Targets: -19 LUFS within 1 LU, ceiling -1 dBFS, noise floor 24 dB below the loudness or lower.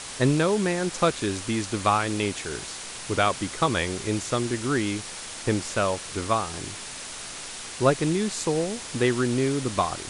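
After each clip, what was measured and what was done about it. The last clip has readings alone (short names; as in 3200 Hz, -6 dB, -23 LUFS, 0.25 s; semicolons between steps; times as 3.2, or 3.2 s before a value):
noise floor -38 dBFS; noise floor target -50 dBFS; loudness -26.0 LUFS; peak -6.5 dBFS; loudness target -19.0 LUFS
-> denoiser 12 dB, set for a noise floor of -38 dBFS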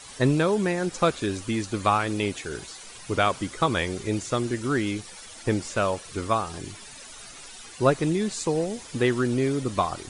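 noise floor -44 dBFS; noise floor target -50 dBFS
-> denoiser 6 dB, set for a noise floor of -44 dBFS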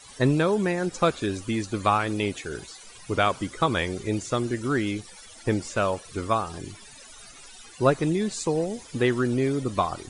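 noise floor -47 dBFS; noise floor target -50 dBFS
-> denoiser 6 dB, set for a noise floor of -47 dBFS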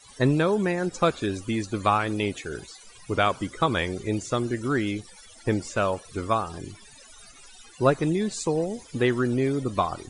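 noise floor -50 dBFS; loudness -26.0 LUFS; peak -7.0 dBFS; loudness target -19.0 LUFS
-> gain +7 dB; limiter -1 dBFS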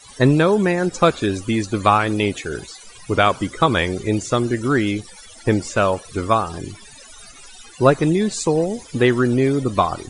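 loudness -19.0 LUFS; peak -1.0 dBFS; noise floor -43 dBFS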